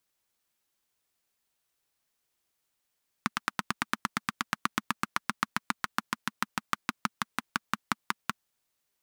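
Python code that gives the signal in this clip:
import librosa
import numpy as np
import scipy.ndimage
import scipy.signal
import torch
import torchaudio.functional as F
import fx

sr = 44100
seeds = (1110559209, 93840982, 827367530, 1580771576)

y = fx.engine_single_rev(sr, seeds[0], length_s=5.2, rpm=1100, resonances_hz=(220.0, 1200.0), end_rpm=600)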